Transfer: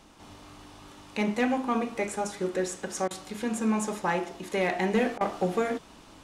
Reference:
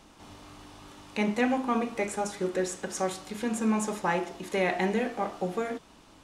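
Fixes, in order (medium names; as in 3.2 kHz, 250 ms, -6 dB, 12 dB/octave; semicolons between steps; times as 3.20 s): clip repair -17 dBFS; interpolate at 3.08/5.18 s, 26 ms; trim 0 dB, from 4.94 s -4 dB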